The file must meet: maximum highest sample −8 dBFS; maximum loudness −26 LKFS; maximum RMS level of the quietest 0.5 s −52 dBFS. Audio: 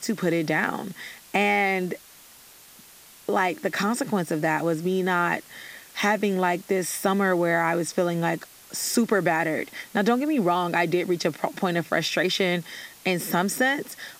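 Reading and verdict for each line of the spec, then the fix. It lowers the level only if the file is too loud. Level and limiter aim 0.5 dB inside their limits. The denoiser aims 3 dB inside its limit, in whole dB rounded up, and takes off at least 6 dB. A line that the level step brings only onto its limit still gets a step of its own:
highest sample −8.5 dBFS: in spec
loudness −24.5 LKFS: out of spec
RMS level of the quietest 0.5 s −50 dBFS: out of spec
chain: broadband denoise 6 dB, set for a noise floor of −50 dBFS
level −2 dB

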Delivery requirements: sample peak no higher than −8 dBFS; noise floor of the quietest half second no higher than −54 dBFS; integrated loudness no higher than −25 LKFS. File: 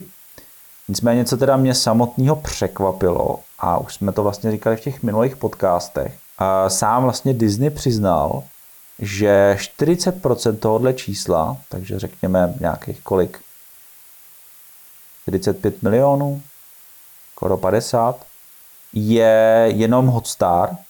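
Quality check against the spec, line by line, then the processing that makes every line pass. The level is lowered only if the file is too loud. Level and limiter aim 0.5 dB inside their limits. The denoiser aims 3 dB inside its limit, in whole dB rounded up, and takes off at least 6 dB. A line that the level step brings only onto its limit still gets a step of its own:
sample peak −5.5 dBFS: out of spec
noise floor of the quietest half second −45 dBFS: out of spec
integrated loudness −18.5 LKFS: out of spec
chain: broadband denoise 6 dB, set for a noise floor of −45 dBFS
level −7 dB

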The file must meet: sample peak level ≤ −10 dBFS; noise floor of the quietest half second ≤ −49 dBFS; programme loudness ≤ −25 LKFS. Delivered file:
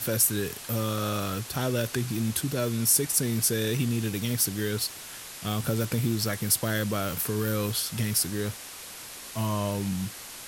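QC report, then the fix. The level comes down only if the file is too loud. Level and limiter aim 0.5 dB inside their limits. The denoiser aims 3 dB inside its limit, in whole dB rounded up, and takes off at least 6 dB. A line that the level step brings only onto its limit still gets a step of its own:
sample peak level −9.5 dBFS: out of spec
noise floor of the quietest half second −42 dBFS: out of spec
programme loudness −27.5 LKFS: in spec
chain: broadband denoise 10 dB, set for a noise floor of −42 dBFS
brickwall limiter −10.5 dBFS

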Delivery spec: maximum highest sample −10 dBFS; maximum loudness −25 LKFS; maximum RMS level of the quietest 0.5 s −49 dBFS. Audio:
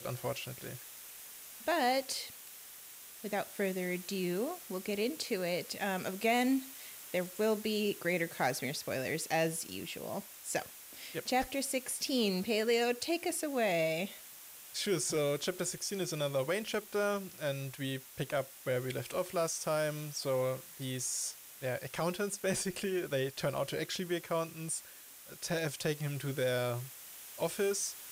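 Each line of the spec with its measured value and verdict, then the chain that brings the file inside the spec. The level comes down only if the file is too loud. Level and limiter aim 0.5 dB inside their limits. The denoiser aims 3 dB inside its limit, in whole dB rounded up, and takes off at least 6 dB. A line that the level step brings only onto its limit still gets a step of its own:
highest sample −18.5 dBFS: in spec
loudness −35.0 LKFS: in spec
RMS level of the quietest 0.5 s −53 dBFS: in spec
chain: no processing needed

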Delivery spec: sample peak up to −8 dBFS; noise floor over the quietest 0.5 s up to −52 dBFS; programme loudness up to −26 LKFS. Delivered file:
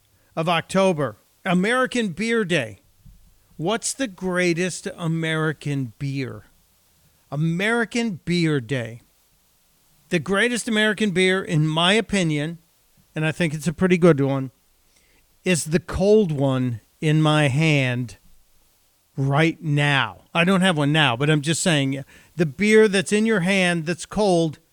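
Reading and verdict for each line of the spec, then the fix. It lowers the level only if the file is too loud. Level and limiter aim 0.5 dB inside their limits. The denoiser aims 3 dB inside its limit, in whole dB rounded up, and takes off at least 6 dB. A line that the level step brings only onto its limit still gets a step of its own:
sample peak −2.0 dBFS: out of spec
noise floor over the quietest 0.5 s −61 dBFS: in spec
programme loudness −21.0 LKFS: out of spec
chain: level −5.5 dB
brickwall limiter −8.5 dBFS

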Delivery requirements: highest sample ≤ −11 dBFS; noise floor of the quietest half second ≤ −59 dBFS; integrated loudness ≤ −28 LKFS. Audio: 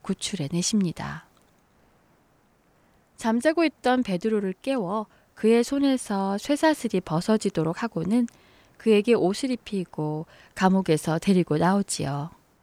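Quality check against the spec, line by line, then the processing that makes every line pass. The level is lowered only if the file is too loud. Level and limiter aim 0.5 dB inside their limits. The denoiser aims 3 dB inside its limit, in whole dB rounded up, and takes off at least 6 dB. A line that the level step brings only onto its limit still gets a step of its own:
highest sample −8.0 dBFS: out of spec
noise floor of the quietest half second −63 dBFS: in spec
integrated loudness −24.5 LKFS: out of spec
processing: level −4 dB

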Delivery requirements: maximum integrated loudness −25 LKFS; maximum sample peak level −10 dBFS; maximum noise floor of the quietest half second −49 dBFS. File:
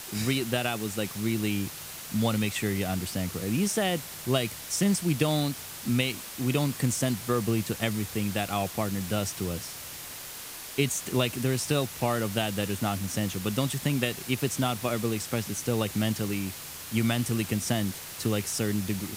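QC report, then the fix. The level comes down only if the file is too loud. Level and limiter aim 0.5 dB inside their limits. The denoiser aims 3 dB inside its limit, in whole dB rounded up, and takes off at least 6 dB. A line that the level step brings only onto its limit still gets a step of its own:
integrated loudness −29.0 LKFS: in spec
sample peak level −9.0 dBFS: out of spec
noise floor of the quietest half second −41 dBFS: out of spec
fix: broadband denoise 11 dB, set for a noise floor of −41 dBFS
brickwall limiter −10.5 dBFS

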